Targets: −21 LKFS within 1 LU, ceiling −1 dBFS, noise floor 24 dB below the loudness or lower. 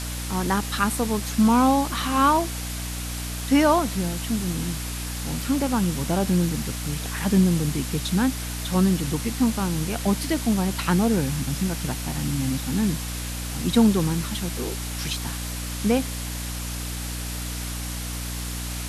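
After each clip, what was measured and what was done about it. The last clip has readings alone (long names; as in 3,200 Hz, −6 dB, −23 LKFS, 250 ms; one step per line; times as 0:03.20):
mains hum 60 Hz; hum harmonics up to 300 Hz; level of the hum −30 dBFS; background noise floor −31 dBFS; target noise floor −49 dBFS; integrated loudness −24.5 LKFS; sample peak −6.5 dBFS; target loudness −21.0 LKFS
→ hum removal 60 Hz, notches 5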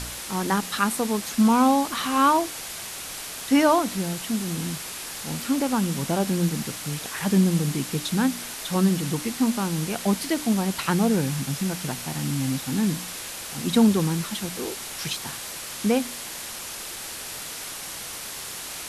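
mains hum none found; background noise floor −36 dBFS; target noise floor −49 dBFS
→ broadband denoise 13 dB, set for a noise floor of −36 dBFS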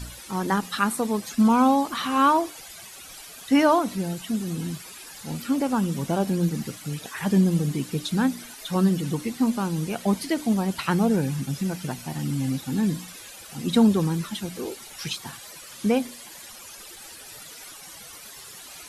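background noise floor −43 dBFS; target noise floor −49 dBFS
→ broadband denoise 6 dB, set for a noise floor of −43 dBFS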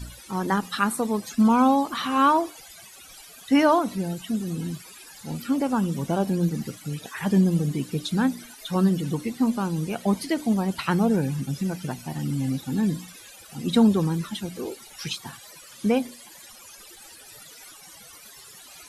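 background noise floor −47 dBFS; target noise floor −49 dBFS
→ broadband denoise 6 dB, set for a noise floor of −47 dBFS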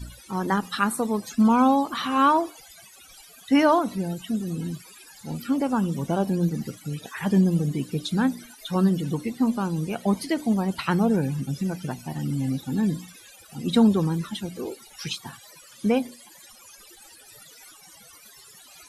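background noise floor −50 dBFS; integrated loudness −24.5 LKFS; sample peak −8.0 dBFS; target loudness −21.0 LKFS
→ level +3.5 dB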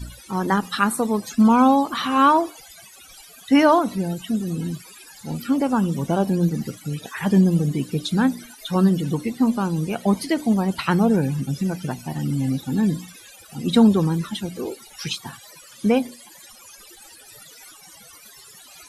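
integrated loudness −21.0 LKFS; sample peak −4.5 dBFS; background noise floor −46 dBFS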